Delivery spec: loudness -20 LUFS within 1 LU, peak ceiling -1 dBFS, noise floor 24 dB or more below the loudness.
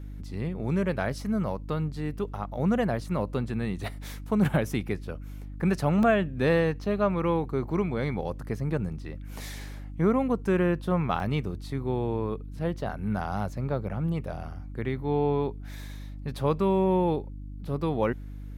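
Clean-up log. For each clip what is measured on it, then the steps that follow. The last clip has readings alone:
dropouts 2; longest dropout 1.2 ms; hum 50 Hz; harmonics up to 300 Hz; hum level -37 dBFS; loudness -28.5 LUFS; peak -12.0 dBFS; loudness target -20.0 LUFS
-> interpolate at 6.03/11.2, 1.2 ms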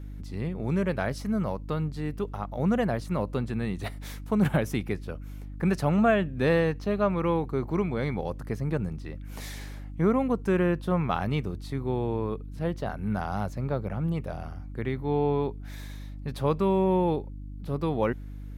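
dropouts 0; hum 50 Hz; harmonics up to 300 Hz; hum level -37 dBFS
-> de-hum 50 Hz, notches 6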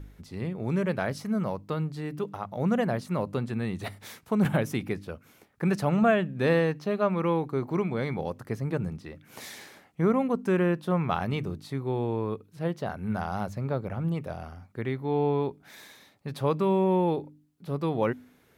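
hum none; loudness -28.5 LUFS; peak -11.5 dBFS; loudness target -20.0 LUFS
-> gain +8.5 dB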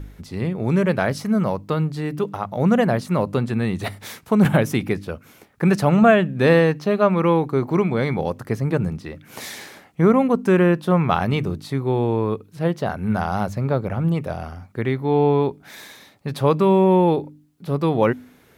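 loudness -20.0 LUFS; peak -3.0 dBFS; noise floor -53 dBFS

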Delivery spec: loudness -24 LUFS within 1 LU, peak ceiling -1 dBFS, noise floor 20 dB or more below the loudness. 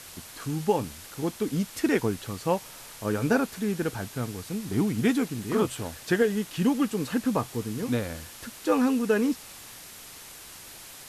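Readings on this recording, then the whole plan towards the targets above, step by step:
noise floor -45 dBFS; noise floor target -48 dBFS; loudness -28.0 LUFS; peak -10.5 dBFS; loudness target -24.0 LUFS
-> denoiser 6 dB, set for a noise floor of -45 dBFS; gain +4 dB

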